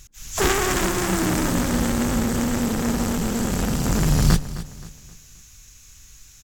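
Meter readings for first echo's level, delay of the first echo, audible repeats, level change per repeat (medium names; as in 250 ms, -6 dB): -14.5 dB, 263 ms, 3, -8.5 dB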